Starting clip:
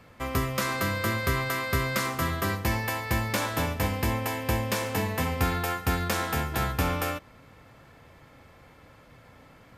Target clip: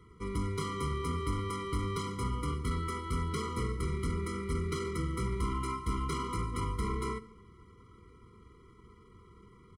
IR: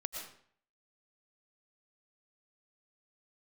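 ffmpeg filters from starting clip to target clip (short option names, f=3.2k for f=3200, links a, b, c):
-filter_complex "[0:a]asoftclip=type=tanh:threshold=-24dB,highshelf=f=2.9k:g=-5,bandreject=f=59.43:t=h:w=4,bandreject=f=118.86:t=h:w=4,bandreject=f=178.29:t=h:w=4,bandreject=f=237.72:t=h:w=4,bandreject=f=297.15:t=h:w=4,bandreject=f=356.58:t=h:w=4,bandreject=f=416.01:t=h:w=4,bandreject=f=475.44:t=h:w=4,bandreject=f=534.87:t=h:w=4,bandreject=f=594.3:t=h:w=4,bandreject=f=653.73:t=h:w=4,bandreject=f=713.16:t=h:w=4,bandreject=f=772.59:t=h:w=4,bandreject=f=832.02:t=h:w=4,bandreject=f=891.45:t=h:w=4,bandreject=f=950.88:t=h:w=4,bandreject=f=1.01031k:t=h:w=4,bandreject=f=1.06974k:t=h:w=4,bandreject=f=1.12917k:t=h:w=4,bandreject=f=1.1886k:t=h:w=4,bandreject=f=1.24803k:t=h:w=4,bandreject=f=1.30746k:t=h:w=4,bandreject=f=1.36689k:t=h:w=4,bandreject=f=1.42632k:t=h:w=4,bandreject=f=1.48575k:t=h:w=4,bandreject=f=1.54518k:t=h:w=4,bandreject=f=1.60461k:t=h:w=4,bandreject=f=1.66404k:t=h:w=4,bandreject=f=1.72347k:t=h:w=4,bandreject=f=1.7829k:t=h:w=4,bandreject=f=1.84233k:t=h:w=4,bandreject=f=1.90176k:t=h:w=4,bandreject=f=1.96119k:t=h:w=4,bandreject=f=2.02062k:t=h:w=4,asetrate=33038,aresample=44100,atempo=1.33484,asplit=2[a][b];[1:a]atrim=start_sample=2205[c];[b][c]afir=irnorm=-1:irlink=0,volume=-16.5dB[d];[a][d]amix=inputs=2:normalize=0,afftfilt=real='re*eq(mod(floor(b*sr/1024/480),2),0)':imag='im*eq(mod(floor(b*sr/1024/480),2),0)':win_size=1024:overlap=0.75,volume=-2dB"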